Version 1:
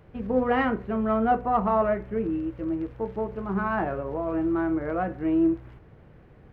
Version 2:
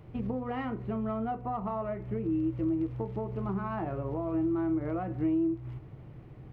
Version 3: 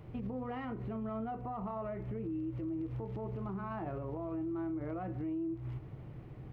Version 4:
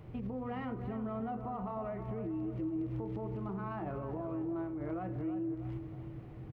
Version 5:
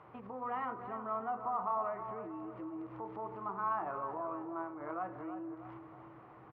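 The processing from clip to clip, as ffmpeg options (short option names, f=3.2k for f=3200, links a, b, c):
-af "acompressor=threshold=-31dB:ratio=6,equalizer=f=125:t=o:w=0.33:g=12,equalizer=f=315:t=o:w=0.33:g=5,equalizer=f=500:t=o:w=0.33:g=-4,equalizer=f=1.6k:t=o:w=0.33:g=-8"
-af "alimiter=level_in=8dB:limit=-24dB:level=0:latency=1:release=90,volume=-8dB"
-filter_complex "[0:a]asplit=2[a][b];[b]adelay=318,lowpass=f=1.9k:p=1,volume=-8.5dB,asplit=2[c][d];[d]adelay=318,lowpass=f=1.9k:p=1,volume=0.48,asplit=2[e][f];[f]adelay=318,lowpass=f=1.9k:p=1,volume=0.48,asplit=2[g][h];[h]adelay=318,lowpass=f=1.9k:p=1,volume=0.48,asplit=2[i][j];[j]adelay=318,lowpass=f=1.9k:p=1,volume=0.48[k];[a][c][e][g][i][k]amix=inputs=6:normalize=0"
-af "bandpass=f=1.1k:t=q:w=2.6:csg=0,volume=11dB"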